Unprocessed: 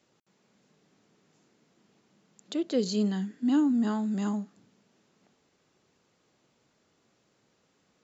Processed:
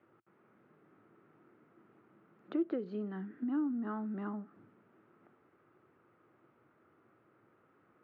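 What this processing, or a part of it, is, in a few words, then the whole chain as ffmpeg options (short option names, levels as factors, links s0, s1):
bass amplifier: -af "acompressor=threshold=0.0158:ratio=5,highpass=79,equalizer=f=110:t=q:w=4:g=5,equalizer=f=190:t=q:w=4:g=-4,equalizer=f=340:t=q:w=4:g=8,equalizer=f=1300:t=q:w=4:g=10,lowpass=f=2100:w=0.5412,lowpass=f=2100:w=1.3066"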